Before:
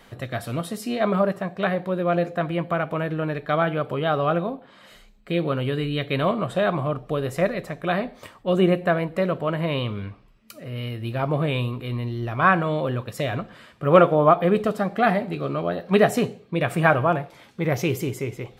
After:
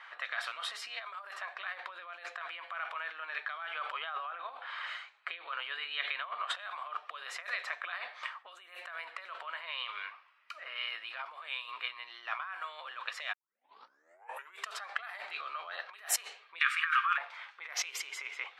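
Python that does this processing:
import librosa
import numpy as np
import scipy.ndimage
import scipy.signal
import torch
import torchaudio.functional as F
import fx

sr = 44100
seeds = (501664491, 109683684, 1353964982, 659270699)

y = fx.over_compress(x, sr, threshold_db=-29.0, ratio=-0.5, at=(3.71, 6.51), fade=0.02)
y = fx.cheby1_highpass(y, sr, hz=1200.0, order=5, at=(16.59, 17.18))
y = fx.edit(y, sr, fx.tape_start(start_s=13.33, length_s=1.36), tone=tone)
y = fx.env_lowpass(y, sr, base_hz=1900.0, full_db=-14.0)
y = fx.over_compress(y, sr, threshold_db=-31.0, ratio=-1.0)
y = scipy.signal.sosfilt(scipy.signal.butter(4, 1100.0, 'highpass', fs=sr, output='sos'), y)
y = F.gain(torch.from_numpy(y), 1.0).numpy()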